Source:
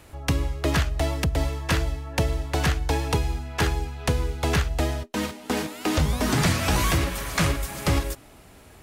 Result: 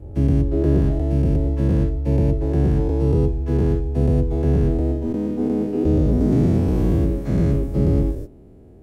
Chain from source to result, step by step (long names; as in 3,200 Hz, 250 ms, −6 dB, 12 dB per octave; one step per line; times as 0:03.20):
every bin's largest magnitude spread in time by 240 ms
drawn EQ curve 150 Hz 0 dB, 390 Hz +3 dB, 1,100 Hz −22 dB, 3,700 Hz −28 dB